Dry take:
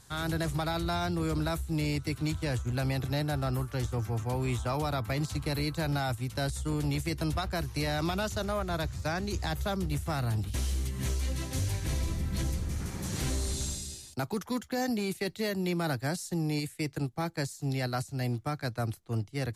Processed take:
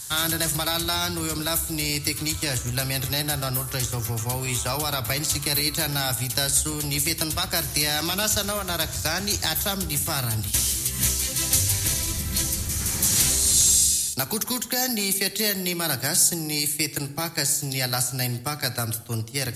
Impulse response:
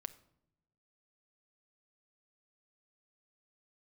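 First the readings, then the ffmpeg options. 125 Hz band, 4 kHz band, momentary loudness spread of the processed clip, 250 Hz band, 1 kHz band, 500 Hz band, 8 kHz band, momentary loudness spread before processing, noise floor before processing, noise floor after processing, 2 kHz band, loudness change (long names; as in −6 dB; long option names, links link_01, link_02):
+1.5 dB, +14.5 dB, 7 LU, +1.5 dB, +4.0 dB, +2.5 dB, +20.5 dB, 3 LU, −51 dBFS, −35 dBFS, +8.5 dB, +10.0 dB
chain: -filter_complex "[0:a]acompressor=threshold=-31dB:ratio=6,crystalizer=i=7.5:c=0[link_01];[1:a]atrim=start_sample=2205,asetrate=29106,aresample=44100[link_02];[link_01][link_02]afir=irnorm=-1:irlink=0,volume=6dB"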